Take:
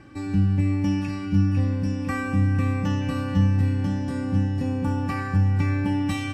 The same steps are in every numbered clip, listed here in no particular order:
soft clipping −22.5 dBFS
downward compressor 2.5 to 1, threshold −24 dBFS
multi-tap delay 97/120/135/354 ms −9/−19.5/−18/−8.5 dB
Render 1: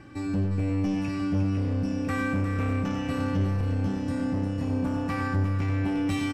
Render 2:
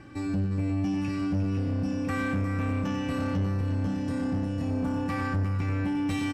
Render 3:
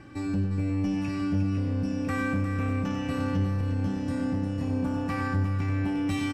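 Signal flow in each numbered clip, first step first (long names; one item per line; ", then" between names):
soft clipping, then downward compressor, then multi-tap delay
downward compressor, then multi-tap delay, then soft clipping
downward compressor, then soft clipping, then multi-tap delay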